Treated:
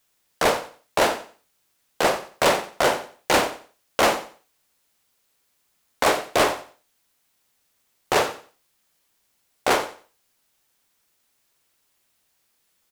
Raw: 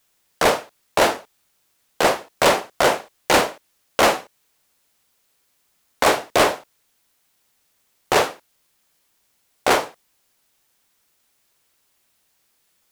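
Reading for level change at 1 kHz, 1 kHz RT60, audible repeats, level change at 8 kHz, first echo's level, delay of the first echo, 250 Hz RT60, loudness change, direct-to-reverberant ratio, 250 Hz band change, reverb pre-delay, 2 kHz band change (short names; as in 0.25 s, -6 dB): -3.0 dB, none, 2, -3.0 dB, -14.0 dB, 90 ms, none, -3.0 dB, none, -3.0 dB, none, -3.0 dB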